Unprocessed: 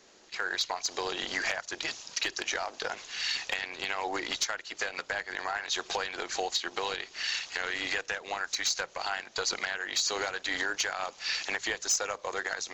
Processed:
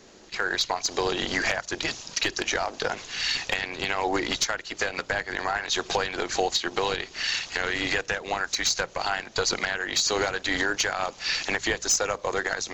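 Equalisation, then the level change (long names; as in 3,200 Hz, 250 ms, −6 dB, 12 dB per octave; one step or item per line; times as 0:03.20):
low-shelf EQ 330 Hz +12 dB
+4.5 dB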